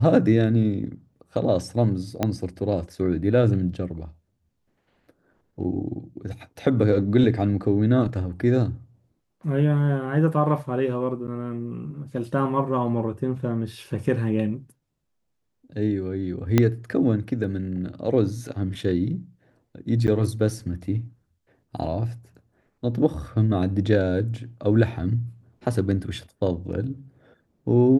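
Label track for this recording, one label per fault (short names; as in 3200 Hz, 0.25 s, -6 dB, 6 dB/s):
2.230000	2.230000	pop -9 dBFS
11.270000	11.280000	gap 8.8 ms
16.580000	16.580000	pop -5 dBFS
20.070000	20.080000	gap 9.4 ms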